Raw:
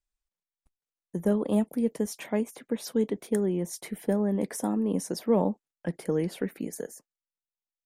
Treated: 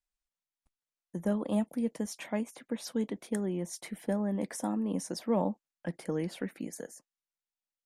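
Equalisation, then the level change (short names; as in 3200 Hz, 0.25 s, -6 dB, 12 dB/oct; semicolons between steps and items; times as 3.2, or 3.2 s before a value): LPF 10000 Hz 12 dB/oct; low shelf 210 Hz -4.5 dB; bell 420 Hz -8 dB 0.31 oct; -2.0 dB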